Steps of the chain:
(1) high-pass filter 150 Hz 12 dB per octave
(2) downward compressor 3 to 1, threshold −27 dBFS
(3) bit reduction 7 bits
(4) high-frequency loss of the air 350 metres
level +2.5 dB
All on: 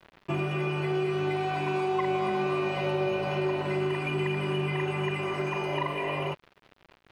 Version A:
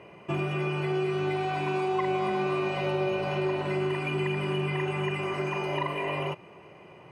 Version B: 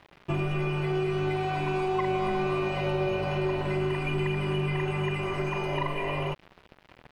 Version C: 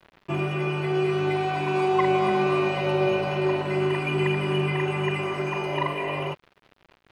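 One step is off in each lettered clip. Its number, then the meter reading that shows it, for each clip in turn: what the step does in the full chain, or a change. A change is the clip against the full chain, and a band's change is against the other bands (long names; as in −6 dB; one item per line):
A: 3, distortion level −17 dB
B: 1, 125 Hz band +3.0 dB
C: 2, change in integrated loudness +4.5 LU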